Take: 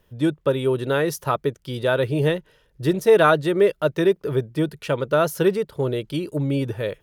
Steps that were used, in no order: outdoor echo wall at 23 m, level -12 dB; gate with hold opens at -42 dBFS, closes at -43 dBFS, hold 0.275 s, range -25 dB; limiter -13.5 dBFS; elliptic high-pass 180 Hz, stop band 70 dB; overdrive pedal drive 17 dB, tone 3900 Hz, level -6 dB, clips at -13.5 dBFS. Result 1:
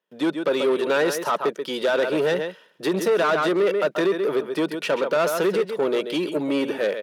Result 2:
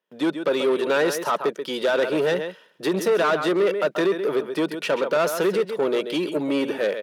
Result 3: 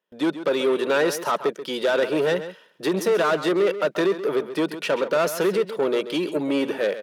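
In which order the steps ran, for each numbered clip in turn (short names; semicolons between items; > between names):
outdoor echo > limiter > overdrive pedal > gate with hold > elliptic high-pass; limiter > outdoor echo > gate with hold > overdrive pedal > elliptic high-pass; overdrive pedal > limiter > elliptic high-pass > gate with hold > outdoor echo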